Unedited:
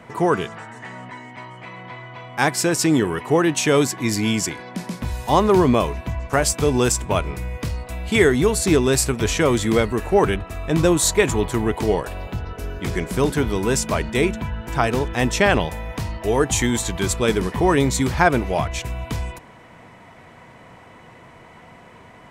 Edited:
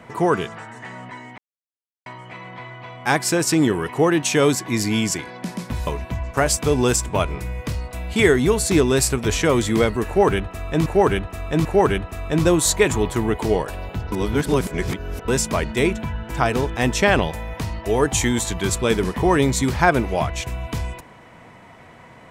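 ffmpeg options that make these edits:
-filter_complex "[0:a]asplit=7[a][b][c][d][e][f][g];[a]atrim=end=1.38,asetpts=PTS-STARTPTS,afade=t=out:st=1.376:d=0.004:c=hsin,apad=pad_dur=0.68[h];[b]atrim=start=1.38:end=5.192,asetpts=PTS-STARTPTS,afade=t=in:d=0.004:c=hsin[i];[c]atrim=start=5.828:end=10.822[j];[d]atrim=start=10.028:end=10.822[k];[e]atrim=start=10.028:end=12.502[l];[f]atrim=start=12.498:end=13.662,asetpts=PTS-STARTPTS,areverse[m];[g]atrim=start=13.658[n];[h][i]concat=n=2:v=0:a=1[o];[o][j]acrossfade=d=0.004:c1=hsin:c2=hsin[p];[p][k]acrossfade=d=0.004:c1=hsin:c2=hsin[q];[q][l]acrossfade=d=0.004:c1=hsin:c2=hsin[r];[r][m]acrossfade=d=0.004:c1=hsin:c2=hsin[s];[s][n]acrossfade=d=0.004:c1=hsin:c2=hsin"

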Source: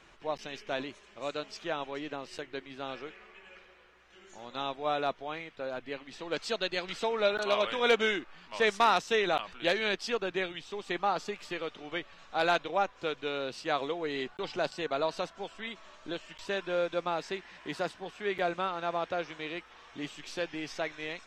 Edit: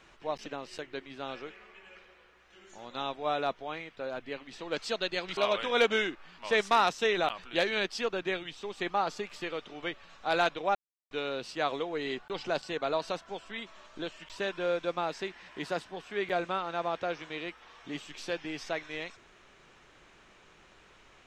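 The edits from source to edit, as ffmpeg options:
-filter_complex "[0:a]asplit=5[a][b][c][d][e];[a]atrim=end=0.462[f];[b]atrim=start=2.058:end=6.972[g];[c]atrim=start=7.458:end=12.84,asetpts=PTS-STARTPTS,afade=t=out:st=5.378:d=0.004:c=hsin[h];[d]atrim=start=12.84:end=13.2,asetpts=PTS-STARTPTS,volume=0[i];[e]atrim=start=13.2,asetpts=PTS-STARTPTS,afade=t=in:d=0.004:c=hsin[j];[f][g]acrossfade=d=0.004:c1=hsin:c2=hsin[k];[h][i][j]concat=n=3:v=0:a=1[l];[k][l]acrossfade=d=0.004:c1=hsin:c2=hsin"

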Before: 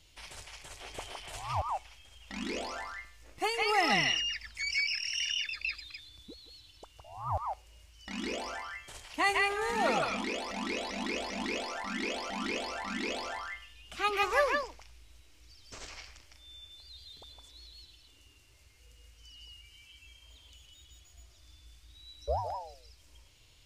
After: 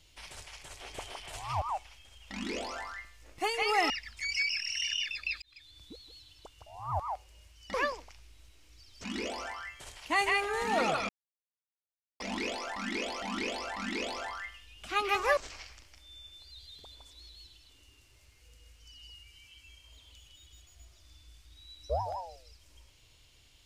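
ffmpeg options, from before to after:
-filter_complex "[0:a]asplit=8[a][b][c][d][e][f][g][h];[a]atrim=end=3.902[i];[b]atrim=start=4.278:end=5.8,asetpts=PTS-STARTPTS,afade=t=out:st=1.518:d=0.004:c=hsin[j];[c]atrim=start=5.8:end=8.122,asetpts=PTS-STARTPTS,afade=t=in:d=0.4[k];[d]atrim=start=14.448:end=15.752[l];[e]atrim=start=8.118:end=10.17,asetpts=PTS-STARTPTS,afade=t=out:st=2.048:d=0.004:c=hsin[m];[f]atrim=start=10.17:end=11.28,asetpts=PTS-STARTPTS,volume=0[n];[g]atrim=start=11.28:end=14.452,asetpts=PTS-STARTPTS,afade=t=in:d=0.004:c=hsin[o];[h]atrim=start=15.748[p];[j][k]concat=n=2:v=0:a=1[q];[i][q]acrossfade=d=0.004:c1=hsin:c2=hsin[r];[r][l]acrossfade=d=0.004:c1=hsin:c2=hsin[s];[m][n][o]concat=n=3:v=0:a=1[t];[s][t]acrossfade=d=0.004:c1=hsin:c2=hsin[u];[u][p]acrossfade=d=0.004:c1=hsin:c2=hsin"

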